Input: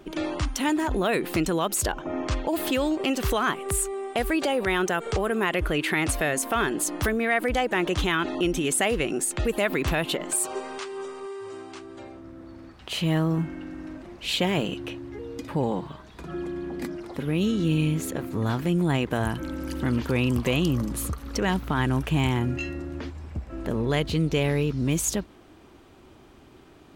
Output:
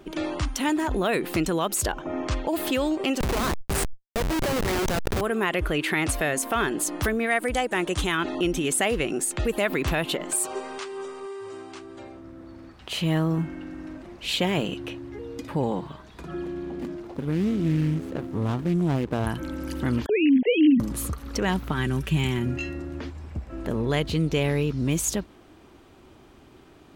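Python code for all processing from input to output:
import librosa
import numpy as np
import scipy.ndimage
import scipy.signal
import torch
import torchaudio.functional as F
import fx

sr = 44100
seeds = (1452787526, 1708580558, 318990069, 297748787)

y = fx.chain(x, sr, fx.hum_notches(base_hz=50, count=6),
    fx.schmitt(flips_db=-25.5),
    fx.env_flatten(amount_pct=100), at=(3.2, 5.21))
y = fx.chain(y, sr, fx.peak_eq(hz=8700.0, db=11.0, octaves=0.65),
    fx.upward_expand(threshold_db=-32.0, expansion=1.5), at=(7.26, 8.18))
y = fx.chain(y, sr, fx.median_filter(points=25),
    fx.doppler_dist(depth_ms=0.17), at=(16.44, 19.27))
y = fx.chain(y, sr, fx.sine_speech(),
    fx.cheby1_bandstop(low_hz=750.0, high_hz=2000.0, order=2),
    fx.low_shelf(hz=370.0, db=9.5), at=(20.06, 20.8))
y = fx.chain(y, sr, fx.peak_eq(hz=800.0, db=-9.5, octaves=1.3),
    fx.comb(ms=5.2, depth=0.54), at=(21.72, 22.46))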